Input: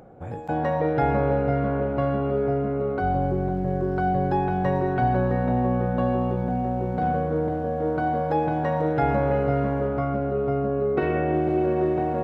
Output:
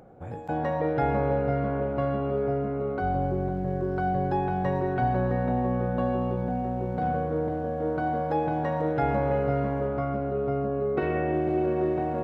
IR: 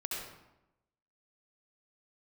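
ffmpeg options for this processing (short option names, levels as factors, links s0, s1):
-filter_complex "[0:a]asplit=2[s0][s1];[1:a]atrim=start_sample=2205,asetrate=36162,aresample=44100[s2];[s1][s2]afir=irnorm=-1:irlink=0,volume=0.112[s3];[s0][s3]amix=inputs=2:normalize=0,volume=0.631"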